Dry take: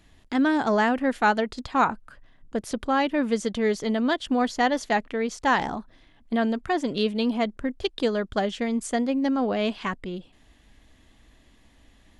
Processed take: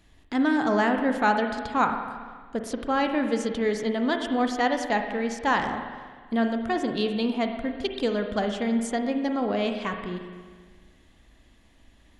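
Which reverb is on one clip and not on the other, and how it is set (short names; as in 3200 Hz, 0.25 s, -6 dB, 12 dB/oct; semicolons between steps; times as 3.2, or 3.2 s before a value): spring tank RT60 1.6 s, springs 39/57 ms, chirp 55 ms, DRR 5 dB; gain -2 dB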